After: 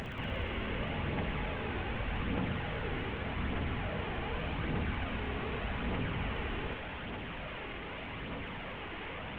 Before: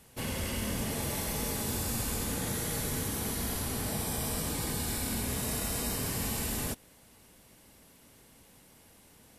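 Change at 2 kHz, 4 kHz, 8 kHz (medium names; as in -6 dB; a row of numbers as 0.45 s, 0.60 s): +3.5 dB, -4.5 dB, under -40 dB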